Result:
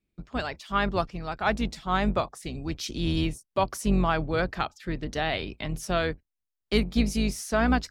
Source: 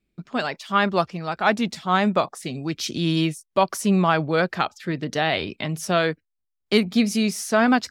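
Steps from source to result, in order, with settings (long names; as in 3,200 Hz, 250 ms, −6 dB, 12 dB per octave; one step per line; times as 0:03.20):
sub-octave generator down 2 octaves, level −1 dB
level −6 dB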